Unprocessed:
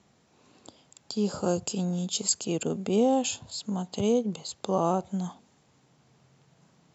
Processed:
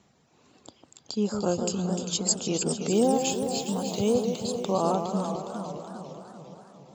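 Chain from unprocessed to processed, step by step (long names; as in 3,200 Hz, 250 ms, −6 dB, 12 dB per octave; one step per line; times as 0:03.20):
reverb reduction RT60 0.85 s
0:02.91–0:04.12: background noise violet −58 dBFS
delay that swaps between a low-pass and a high-pass 150 ms, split 1,300 Hz, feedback 77%, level −6 dB
feedback echo with a swinging delay time 405 ms, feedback 53%, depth 216 cents, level −10 dB
level +1 dB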